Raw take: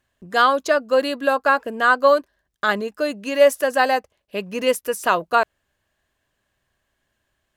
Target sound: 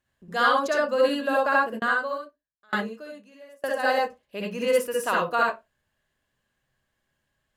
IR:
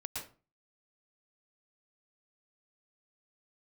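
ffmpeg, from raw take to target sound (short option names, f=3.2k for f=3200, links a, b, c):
-filter_complex "[1:a]atrim=start_sample=2205,asetrate=83790,aresample=44100[a];[0:a][a]afir=irnorm=-1:irlink=0,asplit=3[b][c][d];[b]afade=t=out:st=1.78:d=0.02[e];[c]aeval=exprs='val(0)*pow(10,-33*if(lt(mod(1.1*n/s,1),2*abs(1.1)/1000),1-mod(1.1*n/s,1)/(2*abs(1.1)/1000),(mod(1.1*n/s,1)-2*abs(1.1)/1000)/(1-2*abs(1.1)/1000))/20)':c=same,afade=t=in:st=1.78:d=0.02,afade=t=out:st=3.83:d=0.02[f];[d]afade=t=in:st=3.83:d=0.02[g];[e][f][g]amix=inputs=3:normalize=0,volume=1.5dB"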